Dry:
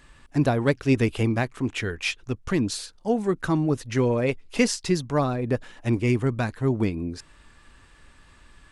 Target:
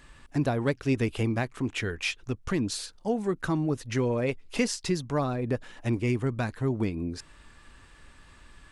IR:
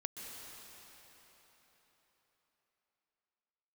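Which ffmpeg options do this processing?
-af "acompressor=threshold=-31dB:ratio=1.5"

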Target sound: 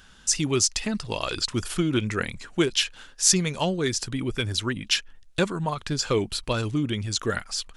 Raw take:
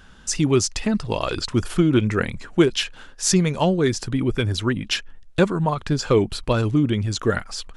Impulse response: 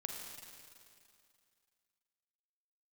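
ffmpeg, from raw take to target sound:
-af "highshelf=f=2k:g=10.5,volume=-7dB"

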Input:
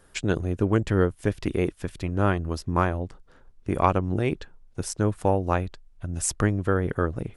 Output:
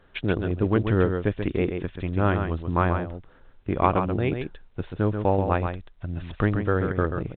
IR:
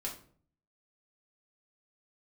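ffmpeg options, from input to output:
-af "aecho=1:1:134:0.473" -ar 8000 -c:a pcm_alaw

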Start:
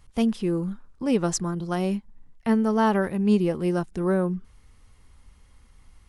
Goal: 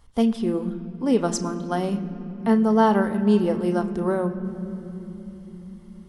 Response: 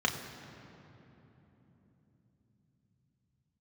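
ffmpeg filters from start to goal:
-filter_complex "[0:a]asplit=2[a][b];[1:a]atrim=start_sample=2205,asetrate=40572,aresample=44100[c];[b][c]afir=irnorm=-1:irlink=0,volume=-13.5dB[d];[a][d]amix=inputs=2:normalize=0"

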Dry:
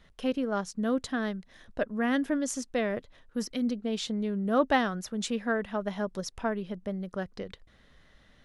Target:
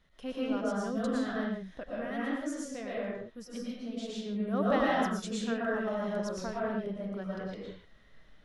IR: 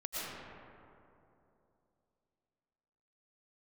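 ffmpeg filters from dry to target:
-filter_complex "[0:a]asettb=1/sr,asplit=3[a][b][c];[a]atrim=end=1.804[d];[b]atrim=start=1.8:end=4.26,asetpts=PTS-STARTPTS,afade=t=in:d=0.004:c=qsin,afade=t=out:st=2.456:d=0.004:c=qsin,flanger=delay=5.5:depth=5:regen=-45:speed=1.9:shape=triangular[e];[c]atrim=start=4.256[f];[d][e]acrossfade=d=0.004:c1=hsin:c2=qsin[g];[g][f]acrossfade=d=0.004:c1=qsin:c2=hsin[h];[1:a]atrim=start_sample=2205,afade=t=out:st=0.36:d=0.01,atrim=end_sample=16317[i];[h][i]afir=irnorm=-1:irlink=0,volume=-4.5dB"

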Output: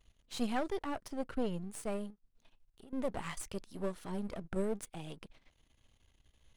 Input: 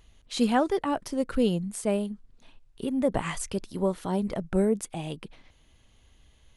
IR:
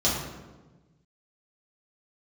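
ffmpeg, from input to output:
-filter_complex "[0:a]aeval=exprs='if(lt(val(0),0),0.251*val(0),val(0))':c=same,asettb=1/sr,asplit=3[a][b][c];[a]atrim=end=1.084[d];[b]atrim=start=1.08:end=1.54,asetpts=PTS-STARTPTS,afade=t=in:d=0.004:c=qsin,afade=t=out:st=0.456:d=0.004:c=qsin,highshelf=f=5.2k:g=-6.5[e];[c]atrim=start=1.536[f];[d][e]acrossfade=d=0.004:c1=hsin:c2=qsin[g];[g][f]acrossfade=d=0.004:c1=qsin:c2=hsin,asettb=1/sr,asplit=3[h][i][j];[h]atrim=end=2.104[k];[i]atrim=start=2.1:end=2.93,asetpts=PTS-STARTPTS,afade=t=in:d=0.004:c=qsin,afade=t=out:st=0.826:d=0.004:c=qsin,acompressor=threshold=-52dB:ratio=3[l];[j]atrim=start=2.926[m];[k][l]acrossfade=d=0.004:c1=hsin:c2=qsin[n];[n][m]acrossfade=d=0.004:c1=qsin:c2=hsin,volume=-6.5dB"

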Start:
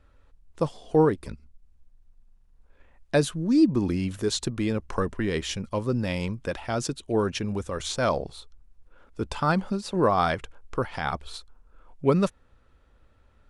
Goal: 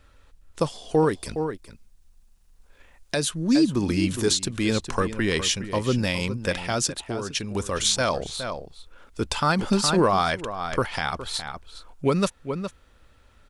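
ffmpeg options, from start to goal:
-filter_complex "[0:a]asettb=1/sr,asplit=3[a][b][c];[a]atrim=end=1.064[d];[b]atrim=start=1.06:end=3.17,asetpts=PTS-STARTPTS,afade=t=in:d=0.004:c=qsin,afade=t=out:st=2.106:d=0.004:c=qsin,bass=f=250:g=-2,treble=f=4k:g=4[e];[c]atrim=start=3.166[f];[d][e]acrossfade=d=0.004:c1=hsin:c2=qsin[g];[g][f]acrossfade=d=0.004:c1=qsin:c2=hsin,asettb=1/sr,asplit=3[h][i][j];[h]atrim=end=6.834[k];[i]atrim=start=6.83:end=7.55,asetpts=PTS-STARTPTS,afade=t=in:d=0.004:c=qsin,afade=t=out:st=0.716:d=0.004:c=qsin,acompressor=threshold=-32dB:ratio=6[l];[j]atrim=start=7.546[m];[k][l]acrossfade=d=0.004:c1=hsin:c2=qsin[n];[n][m]acrossfade=d=0.004:c1=qsin:c2=hsin,highshelf=f=2k:g=11,asplit=2[o][p];[p]adelay=414,volume=-11dB,highshelf=f=4k:g=-9.32[q];[o][q]amix=inputs=2:normalize=0,asettb=1/sr,asplit=3[r][s][t];[r]atrim=end=9.594[u];[s]atrim=start=9.59:end=10.36,asetpts=PTS-STARTPTS,afade=t=in:d=0.004:c=qsin,afade=t=out:st=0.766:d=0.004:c=qsin,acontrast=31[v];[t]atrim=start=10.356[w];[u][v]acrossfade=d=0.004:c1=hsin:c2=qsin[x];[x][w]acrossfade=d=0.004:c1=qsin:c2=hsin,alimiter=limit=-13.5dB:level=0:latency=1:release=359,volume=2.5dB"

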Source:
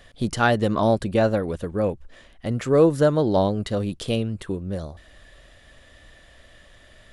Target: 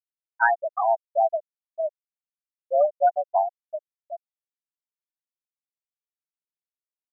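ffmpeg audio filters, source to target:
-af "highpass=f=520:t=q:w=0.5412,highpass=f=520:t=q:w=1.307,lowpass=f=2.6k:t=q:w=0.5176,lowpass=f=2.6k:t=q:w=0.7071,lowpass=f=2.6k:t=q:w=1.932,afreqshift=110,afftfilt=real='re*gte(hypot(re,im),0.355)':imag='im*gte(hypot(re,im),0.355)':win_size=1024:overlap=0.75,volume=2dB"

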